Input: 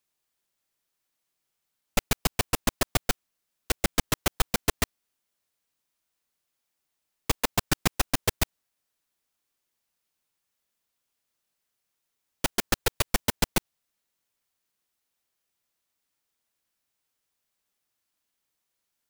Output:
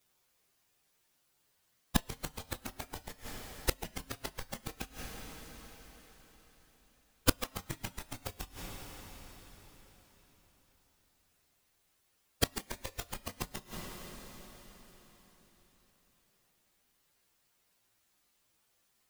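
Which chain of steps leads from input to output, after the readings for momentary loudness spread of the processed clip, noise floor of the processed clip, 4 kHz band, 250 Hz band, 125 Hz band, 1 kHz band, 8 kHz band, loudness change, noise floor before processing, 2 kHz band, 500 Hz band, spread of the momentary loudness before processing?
20 LU, −75 dBFS, −10.0 dB, −8.5 dB, −9.0 dB, −11.5 dB, −11.0 dB, −11.5 dB, −82 dBFS, −11.5 dB, −10.0 dB, 5 LU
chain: partials spread apart or drawn together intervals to 115%
coupled-rooms reverb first 0.47 s, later 4.5 s, from −21 dB, DRR 10.5 dB
gate with flip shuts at −24 dBFS, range −29 dB
level +13.5 dB

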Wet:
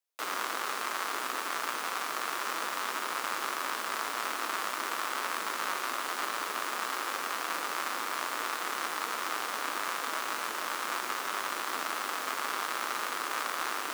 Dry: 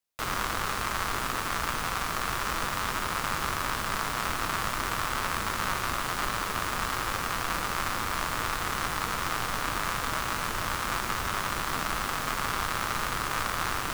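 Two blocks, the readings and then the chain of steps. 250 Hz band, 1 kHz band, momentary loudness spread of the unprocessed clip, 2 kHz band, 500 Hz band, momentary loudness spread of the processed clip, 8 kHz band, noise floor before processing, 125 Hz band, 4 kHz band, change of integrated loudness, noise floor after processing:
−8.0 dB, −3.0 dB, 1 LU, −3.0 dB, −3.0 dB, 1 LU, −3.0 dB, −33 dBFS, below −25 dB, −3.0 dB, −3.0 dB, −37 dBFS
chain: high-pass filter 290 Hz 24 dB per octave
level −3 dB

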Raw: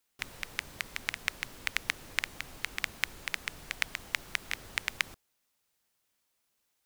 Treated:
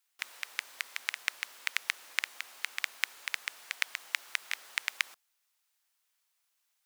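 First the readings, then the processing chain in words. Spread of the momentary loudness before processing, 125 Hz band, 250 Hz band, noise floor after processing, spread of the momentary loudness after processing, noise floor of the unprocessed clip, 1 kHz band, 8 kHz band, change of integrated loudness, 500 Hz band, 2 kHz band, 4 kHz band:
6 LU, below −30 dB, below −20 dB, −79 dBFS, 6 LU, −78 dBFS, −1.5 dB, 0.0 dB, 0.0 dB, −9.5 dB, 0.0 dB, 0.0 dB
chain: high-pass filter 920 Hz 12 dB per octave

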